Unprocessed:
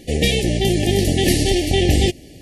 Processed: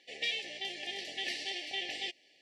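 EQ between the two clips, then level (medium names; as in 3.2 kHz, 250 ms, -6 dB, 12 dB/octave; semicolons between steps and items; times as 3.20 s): high-pass 1.3 kHz 12 dB/octave; distance through air 170 m; band-stop 6.6 kHz, Q 17; -8.5 dB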